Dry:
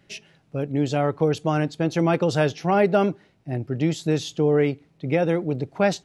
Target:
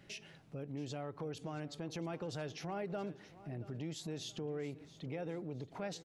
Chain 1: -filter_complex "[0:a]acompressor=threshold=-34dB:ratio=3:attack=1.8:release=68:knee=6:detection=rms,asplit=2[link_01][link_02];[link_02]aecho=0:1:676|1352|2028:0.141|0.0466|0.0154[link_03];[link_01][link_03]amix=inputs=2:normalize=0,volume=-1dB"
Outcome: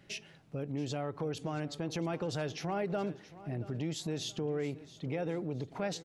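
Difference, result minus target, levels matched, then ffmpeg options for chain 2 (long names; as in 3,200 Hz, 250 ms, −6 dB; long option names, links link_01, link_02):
downward compressor: peak gain reduction −6.5 dB
-filter_complex "[0:a]acompressor=threshold=-43.5dB:ratio=3:attack=1.8:release=68:knee=6:detection=rms,asplit=2[link_01][link_02];[link_02]aecho=0:1:676|1352|2028:0.141|0.0466|0.0154[link_03];[link_01][link_03]amix=inputs=2:normalize=0,volume=-1dB"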